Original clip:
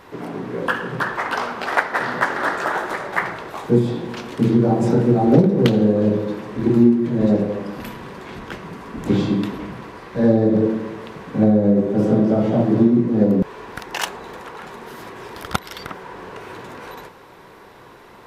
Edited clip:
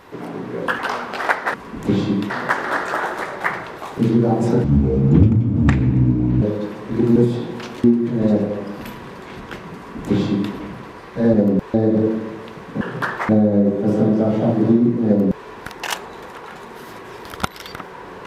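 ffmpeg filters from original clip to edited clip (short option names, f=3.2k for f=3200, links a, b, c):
-filter_complex "[0:a]asplit=13[a][b][c][d][e][f][g][h][i][j][k][l][m];[a]atrim=end=0.792[n];[b]atrim=start=1.268:end=2.022[o];[c]atrim=start=8.748:end=9.512[p];[d]atrim=start=2.018:end=3.702[q];[e]atrim=start=4.378:end=5.044[r];[f]atrim=start=5.04:end=6.09,asetpts=PTS-STARTPTS,asetrate=26019,aresample=44100,atrim=end_sample=78483,asetpts=PTS-STARTPTS[s];[g]atrim=start=6.086:end=6.832[t];[h]atrim=start=3.698:end=4.382[u];[i]atrim=start=6.828:end=10.332[v];[j]atrim=start=13.168:end=13.572[w];[k]atrim=start=10.328:end=11.402[x];[l]atrim=start=0.788:end=1.272[y];[m]atrim=start=11.398[z];[n][o]acrossfade=d=0.004:c1=hsin:c2=hsin[aa];[aa][p]acrossfade=d=0.004:c1=hsin:c2=hsin[ab];[ab][q]acrossfade=d=0.004:c1=hsin:c2=hsin[ac];[ac][r]acrossfade=d=0.004:c1=hsin:c2=hsin[ad];[ad][s]acrossfade=d=0.004:c1=hsin:c2=hsin[ae];[ae][t]acrossfade=d=0.004:c1=hsin:c2=hsin[af];[af][u]acrossfade=d=0.004:c1=hsin:c2=hsin[ag];[ag][v]acrossfade=d=0.004:c1=hsin:c2=hsin[ah];[ah][w]acrossfade=d=0.004:c1=hsin:c2=hsin[ai];[ai][x]acrossfade=d=0.004:c1=hsin:c2=hsin[aj];[aj][y]acrossfade=d=0.004:c1=hsin:c2=hsin[ak];[ak][z]acrossfade=d=0.004:c1=hsin:c2=hsin"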